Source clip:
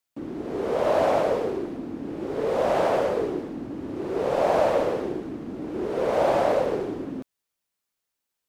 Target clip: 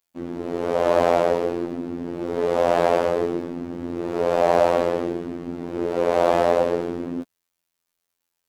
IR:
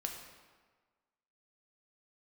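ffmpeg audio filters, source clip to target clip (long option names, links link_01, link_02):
-af "afftfilt=real='hypot(re,im)*cos(PI*b)':imag='0':win_size=2048:overlap=0.75,volume=6.5dB"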